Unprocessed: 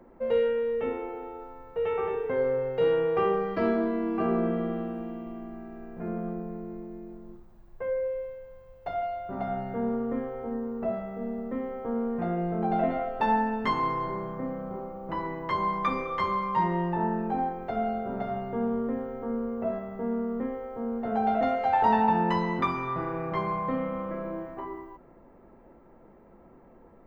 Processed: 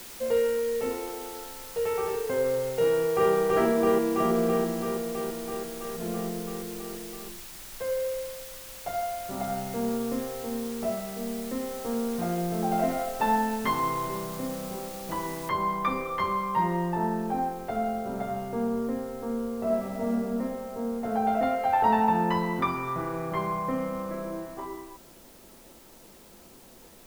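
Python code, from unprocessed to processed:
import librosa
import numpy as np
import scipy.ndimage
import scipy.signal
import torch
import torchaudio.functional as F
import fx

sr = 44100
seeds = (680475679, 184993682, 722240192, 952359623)

y = fx.echo_throw(x, sr, start_s=2.87, length_s=0.45, ms=330, feedback_pct=80, wet_db=-0.5)
y = fx.noise_floor_step(y, sr, seeds[0], at_s=15.49, before_db=-44, after_db=-55, tilt_db=0.0)
y = fx.reverb_throw(y, sr, start_s=19.57, length_s=0.52, rt60_s=2.9, drr_db=-1.5)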